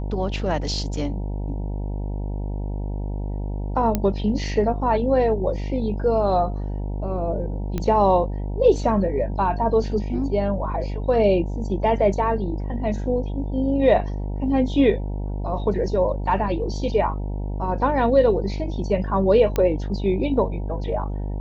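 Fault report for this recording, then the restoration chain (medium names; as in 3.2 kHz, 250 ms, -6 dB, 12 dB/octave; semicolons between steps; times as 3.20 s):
buzz 50 Hz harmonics 19 -27 dBFS
3.95 s: pop -8 dBFS
7.78 s: pop -13 dBFS
19.56 s: pop -10 dBFS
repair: de-click; de-hum 50 Hz, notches 19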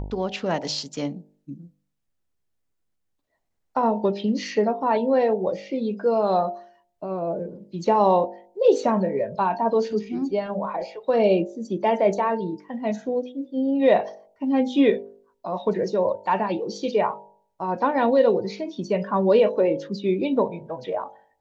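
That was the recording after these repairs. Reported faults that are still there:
nothing left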